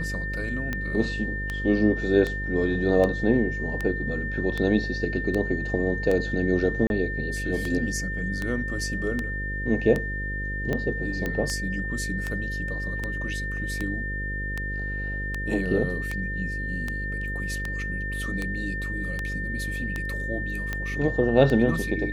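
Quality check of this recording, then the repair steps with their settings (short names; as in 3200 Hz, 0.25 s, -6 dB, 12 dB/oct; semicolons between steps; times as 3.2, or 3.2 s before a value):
buzz 50 Hz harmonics 11 -32 dBFS
tick 78 rpm -15 dBFS
tone 1800 Hz -31 dBFS
6.87–6.9 gap 31 ms
11.26 pop -15 dBFS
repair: de-click; de-hum 50 Hz, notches 11; notch 1800 Hz, Q 30; interpolate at 6.87, 31 ms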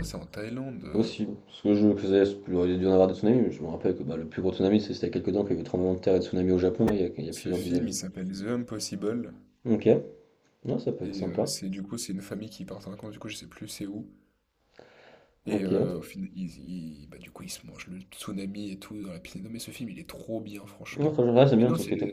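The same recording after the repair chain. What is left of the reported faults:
none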